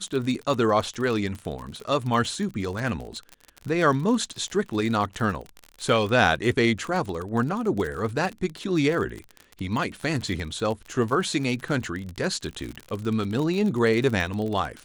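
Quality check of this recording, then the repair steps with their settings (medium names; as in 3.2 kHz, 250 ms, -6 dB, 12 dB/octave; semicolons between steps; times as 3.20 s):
crackle 40 per s -29 dBFS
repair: de-click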